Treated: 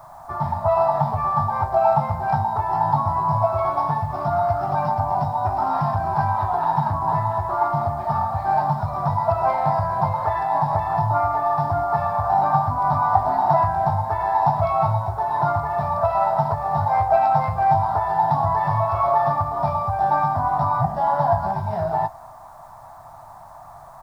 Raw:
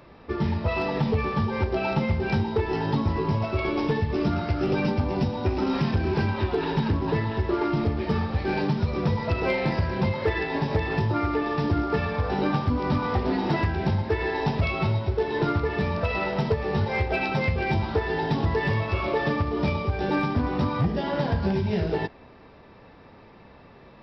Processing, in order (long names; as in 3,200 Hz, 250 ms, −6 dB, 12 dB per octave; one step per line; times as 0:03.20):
high-pass filter 100 Hz
parametric band 280 Hz +9 dB 2.2 octaves
double-tracking delay 19 ms −12 dB
background noise pink −51 dBFS
drawn EQ curve 140 Hz 0 dB, 200 Hz −18 dB, 470 Hz −25 dB, 670 Hz +13 dB, 1,100 Hz +11 dB, 2,700 Hz −18 dB, 3,900 Hz −10 dB, 8,900 Hz −4 dB
level −1 dB